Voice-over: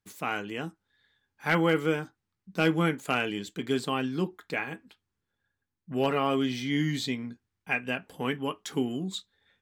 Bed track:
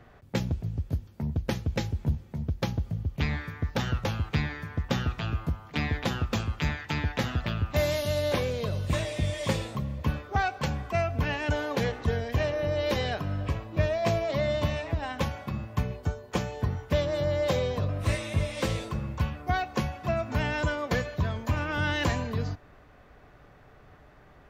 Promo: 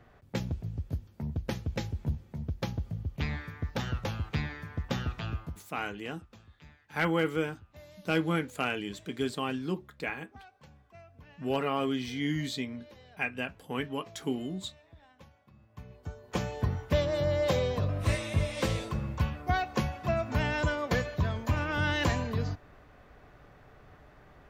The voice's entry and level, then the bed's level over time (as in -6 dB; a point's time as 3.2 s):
5.50 s, -3.5 dB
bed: 5.33 s -4.5 dB
5.92 s -26 dB
15.54 s -26 dB
16.44 s -1 dB